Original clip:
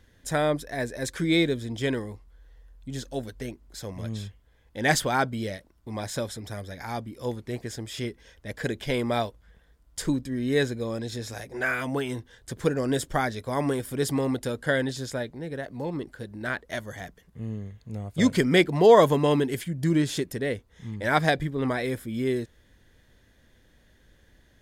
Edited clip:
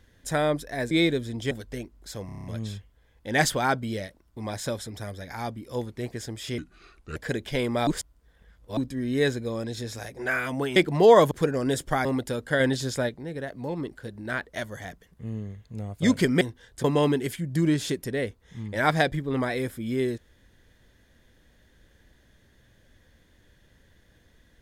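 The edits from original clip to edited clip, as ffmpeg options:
-filter_complex "[0:a]asplit=20[a][b][c][d][e][f][g][h][i][j][k][l][m][n][o][p][q][r][s][t];[a]atrim=end=0.912[u];[b]atrim=start=1.268:end=1.872[v];[c]atrim=start=3.188:end=3.972[w];[d]atrim=start=3.938:end=3.972[x];[e]atrim=start=3.938:end=3.972[y];[f]atrim=start=3.938:end=3.972[z];[g]atrim=start=3.938:end=3.972[aa];[h]atrim=start=3.938:end=3.972[ab];[i]atrim=start=3.938:end=8.084[ac];[j]atrim=start=8.08:end=8.51,asetpts=PTS-STARTPTS,asetrate=32634,aresample=44100[ad];[k]atrim=start=8.506:end=9.222[ae];[l]atrim=start=9.218:end=10.122,asetpts=PTS-STARTPTS,areverse[af];[m]atrim=start=10.118:end=12.112[ag];[n]atrim=start=18.568:end=19.122[ah];[o]atrim=start=12.538:end=13.282[ai];[p]atrim=start=14.208:end=14.762[aj];[q]atrim=start=14.758:end=15.252,asetpts=PTS-STARTPTS,volume=4dB[ak];[r]atrim=start=15.248:end=18.572[al];[s]atrim=start=12.108:end=12.542[am];[t]atrim=start=19.118[an];[u][v]acrossfade=d=0.004:c1=hsin:c2=hsin[ao];[ao][w]acrossfade=d=0.004:c1=hsin:c2=hsin[ap];[ap][x]acrossfade=d=0.004:c1=hsin:c2=hsin[aq];[aq][y]acrossfade=d=0.004:c1=hsin:c2=hsin[ar];[ar][z]acrossfade=d=0.004:c1=hsin:c2=hsin[as];[as][aa]acrossfade=d=0.004:c1=hsin:c2=hsin[at];[at][ab]acrossfade=d=0.004:c1=hsin:c2=hsin[au];[au][ac]acrossfade=d=0.004:c1=hsin:c2=hsin[av];[av][ad]acrossfade=d=0.004:c1=hsin:c2=hsin[aw];[aw][ae]acrossfade=d=0.004:c1=hsin:c2=hsin[ax];[ax][af]acrossfade=d=0.004:c1=hsin:c2=hsin[ay];[ay][ag]acrossfade=d=0.004:c1=hsin:c2=hsin[az];[az][ah]acrossfade=d=0.004:c1=hsin:c2=hsin[ba];[ba][ai]acrossfade=d=0.004:c1=hsin:c2=hsin[bb];[bb][aj]acrossfade=d=0.004:c1=hsin:c2=hsin[bc];[bc][ak]acrossfade=d=0.004:c1=hsin:c2=hsin[bd];[bd][al]acrossfade=d=0.004:c1=hsin:c2=hsin[be];[be][am]acrossfade=d=0.004:c1=hsin:c2=hsin[bf];[bf][an]acrossfade=d=0.004:c1=hsin:c2=hsin"

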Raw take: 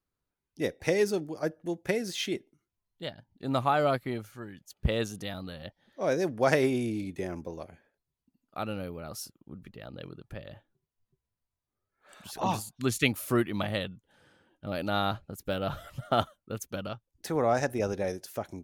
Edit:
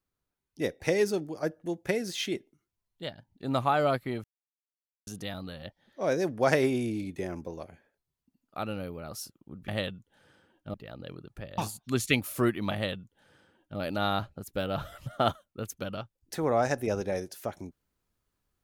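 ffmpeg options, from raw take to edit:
-filter_complex "[0:a]asplit=6[a][b][c][d][e][f];[a]atrim=end=4.24,asetpts=PTS-STARTPTS,afade=t=out:st=4.236:d=0.004:c=hsin[g];[b]atrim=start=4.24:end=5.07,asetpts=PTS-STARTPTS,volume=0[h];[c]atrim=start=5.07:end=9.682,asetpts=PTS-STARTPTS,afade=t=in:d=0.004:c=hsin[i];[d]atrim=start=13.648:end=14.712[j];[e]atrim=start=9.678:end=10.522[k];[f]atrim=start=12.498[l];[g][h][i]concat=n=3:v=0:a=1[m];[m][j]acrossfade=d=0.004:c1=hsin:c2=hsin[n];[n][k]acrossfade=d=0.004:c1=hsin:c2=hsin[o];[o][l]acrossfade=d=0.004:c1=hsin:c2=hsin"

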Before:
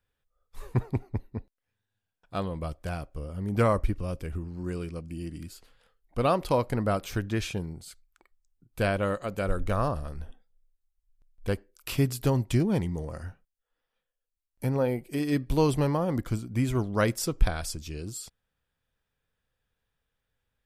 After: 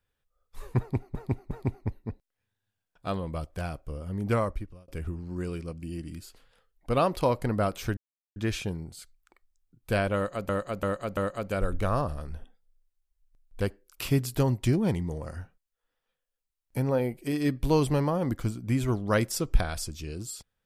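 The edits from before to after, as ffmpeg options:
-filter_complex "[0:a]asplit=8[a][b][c][d][e][f][g][h];[a]atrim=end=1.152[i];[b]atrim=start=0.788:end=1.152[j];[c]atrim=start=0.788:end=4.16,asetpts=PTS-STARTPTS,afade=t=out:st=2.652:d=0.72[k];[d]atrim=start=4.16:end=7.25,asetpts=PTS-STARTPTS,afade=t=in:d=0.004:c=hsin,afade=t=out:st=3.086:d=0.004:c=hsin,apad=pad_dur=0.39[l];[e]atrim=start=7.25:end=9.382,asetpts=PTS-STARTPTS,afade=t=in:d=0.004:c=hsin[m];[f]atrim=start=9.038:end=9.382[n];[g]atrim=start=9.038:end=9.382[o];[h]atrim=start=9.038[p];[i][j]acrossfade=d=0.004:c1=hsin:c2=hsin[q];[k][l][m]concat=n=3:v=0:a=1[r];[q][r]acrossfade=d=0.004:c1=hsin:c2=hsin[s];[s][n]acrossfade=d=0.004:c1=hsin:c2=hsin[t];[t][o]acrossfade=d=0.004:c1=hsin:c2=hsin[u];[u][p]acrossfade=d=0.004:c1=hsin:c2=hsin"

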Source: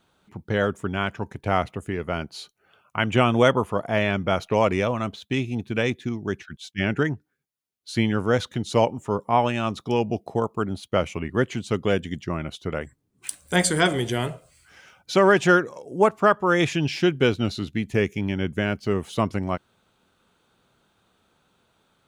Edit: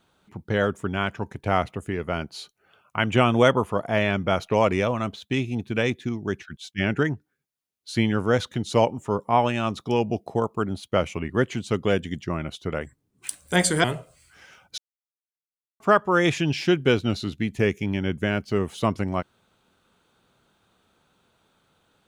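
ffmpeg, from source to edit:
-filter_complex "[0:a]asplit=4[a][b][c][d];[a]atrim=end=13.842[e];[b]atrim=start=14.188:end=15.13,asetpts=PTS-STARTPTS,afade=t=out:st=0.938:d=0.004:c=hsin[f];[c]atrim=start=15.13:end=16.15,asetpts=PTS-STARTPTS,volume=0[g];[d]atrim=start=16.15,asetpts=PTS-STARTPTS,afade=t=in:d=0.004:c=hsin[h];[f][g][h]concat=n=3:v=0:a=1[i];[e][i]acrossfade=d=0.004:c1=hsin:c2=hsin"

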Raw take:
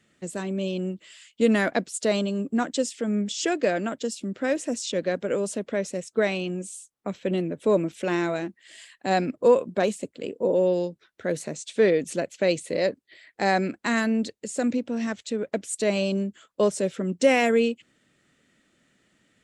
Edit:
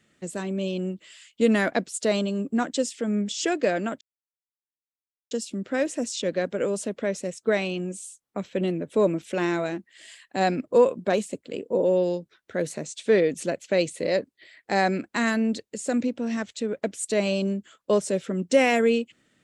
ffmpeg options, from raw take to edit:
-filter_complex "[0:a]asplit=2[a][b];[a]atrim=end=4.01,asetpts=PTS-STARTPTS,afade=t=out:st=4.006:d=0.004:c=hsin,apad=pad_dur=1.3[c];[b]atrim=start=4.01,asetpts=PTS-STARTPTS,afade=t=in:d=0.004:c=hsin[d];[c][d]concat=n=2:v=0:a=1"

